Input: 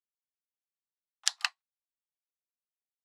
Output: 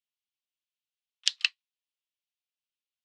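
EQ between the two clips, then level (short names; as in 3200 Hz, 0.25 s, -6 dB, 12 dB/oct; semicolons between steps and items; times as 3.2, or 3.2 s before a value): resonant high-pass 2900 Hz, resonance Q 2.5; air absorption 82 m; +2.0 dB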